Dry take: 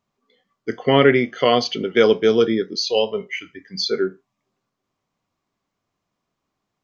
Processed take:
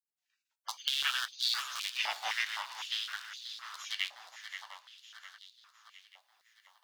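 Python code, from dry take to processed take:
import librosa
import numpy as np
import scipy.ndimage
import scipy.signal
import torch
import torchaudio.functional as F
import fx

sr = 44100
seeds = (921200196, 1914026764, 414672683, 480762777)

y = fx.rattle_buzz(x, sr, strikes_db=-33.0, level_db=-16.0)
y = fx.recorder_agc(y, sr, target_db=-5.5, rise_db_per_s=5.8, max_gain_db=30)
y = fx.spec_gate(y, sr, threshold_db=-30, keep='weak')
y = fx.high_shelf(y, sr, hz=3300.0, db=11.5, at=(0.69, 1.92))
y = fx.echo_swing(y, sr, ms=708, ratio=3, feedback_pct=50, wet_db=-10.0)
y = fx.room_shoebox(y, sr, seeds[0], volume_m3=140.0, walls='furnished', distance_m=0.38)
y = fx.filter_held_highpass(y, sr, hz=3.9, low_hz=760.0, high_hz=3800.0)
y = F.gain(torch.from_numpy(y), -4.0).numpy()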